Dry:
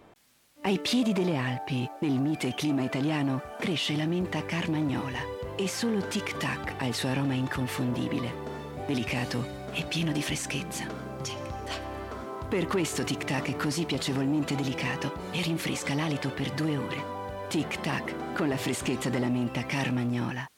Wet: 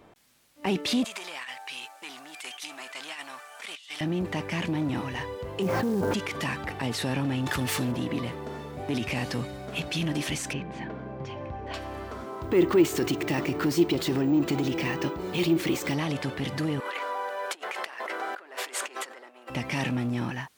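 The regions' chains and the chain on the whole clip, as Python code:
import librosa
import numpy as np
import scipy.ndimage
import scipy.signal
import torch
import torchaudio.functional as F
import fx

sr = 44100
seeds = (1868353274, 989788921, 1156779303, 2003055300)

y = fx.chain(x, sr, fx.highpass(hz=1300.0, slope=12),
    fx.over_compress(threshold_db=-38.0, ratio=-0.5),
    fx.peak_eq(hz=8200.0, db=5.5, octaves=0.89), at=(1.04, 4.01))
y = fx.chain(y, sr, fx.lowpass(hz=1000.0, slope=12),
    fx.quant_companded(bits=6),
    fx.env_flatten(amount_pct=100), at=(5.62, 6.14))
y = fx.chain(y, sr, fx.self_delay(depth_ms=0.063),
    fx.high_shelf(hz=3400.0, db=10.0),
    fx.env_flatten(amount_pct=50), at=(7.46, 7.92))
y = fx.chain(y, sr, fx.lowpass(hz=2100.0, slope=12),
    fx.notch(hz=1300.0, q=6.2), at=(10.53, 11.74))
y = fx.chain(y, sr, fx.peak_eq(hz=350.0, db=14.0, octaves=0.28),
    fx.resample_bad(factor=2, down='filtered', up='hold'), at=(12.42, 15.94))
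y = fx.chain(y, sr, fx.peak_eq(hz=1500.0, db=6.5, octaves=0.9),
    fx.over_compress(threshold_db=-33.0, ratio=-0.5),
    fx.highpass(hz=440.0, slope=24), at=(16.8, 19.5))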